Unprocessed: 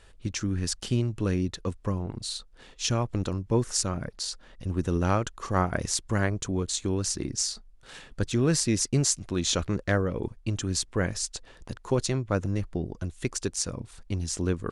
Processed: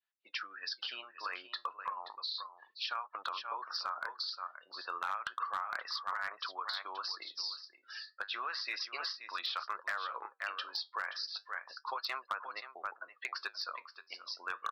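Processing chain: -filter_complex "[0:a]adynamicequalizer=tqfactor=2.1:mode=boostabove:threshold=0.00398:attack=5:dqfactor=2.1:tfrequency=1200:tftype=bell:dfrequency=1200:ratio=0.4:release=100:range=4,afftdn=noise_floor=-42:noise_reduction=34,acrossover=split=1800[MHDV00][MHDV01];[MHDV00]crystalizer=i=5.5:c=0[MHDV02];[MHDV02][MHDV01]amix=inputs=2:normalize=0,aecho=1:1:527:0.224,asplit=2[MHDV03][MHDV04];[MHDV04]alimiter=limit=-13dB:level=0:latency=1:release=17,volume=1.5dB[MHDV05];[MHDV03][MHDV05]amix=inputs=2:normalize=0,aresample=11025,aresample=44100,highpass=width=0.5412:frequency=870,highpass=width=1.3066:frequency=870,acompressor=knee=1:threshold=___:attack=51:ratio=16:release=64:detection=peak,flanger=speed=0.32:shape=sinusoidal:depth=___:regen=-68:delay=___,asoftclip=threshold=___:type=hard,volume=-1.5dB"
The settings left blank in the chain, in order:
-35dB, 7.4, 4.1, -25dB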